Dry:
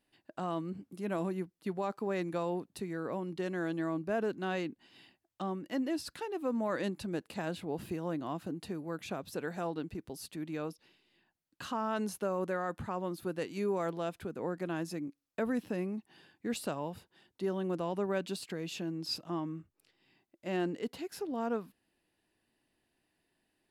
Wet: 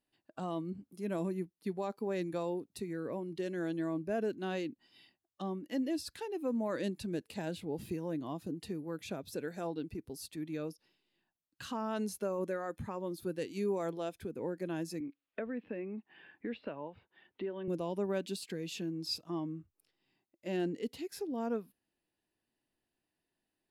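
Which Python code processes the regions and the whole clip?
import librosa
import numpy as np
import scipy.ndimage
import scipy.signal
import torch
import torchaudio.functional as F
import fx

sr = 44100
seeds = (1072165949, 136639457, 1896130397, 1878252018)

y = fx.chain(x, sr, fx.lowpass(hz=2900.0, slope=24),
    fx.low_shelf(hz=300.0, db=-9.5),
    fx.band_squash(depth_pct=70), at=(15.0, 17.68))
y = fx.peak_eq(y, sr, hz=2100.0, db=-2.5, octaves=0.77)
y = fx.noise_reduce_blind(y, sr, reduce_db=8)
y = fx.dynamic_eq(y, sr, hz=1200.0, q=1.0, threshold_db=-49.0, ratio=4.0, max_db=-5)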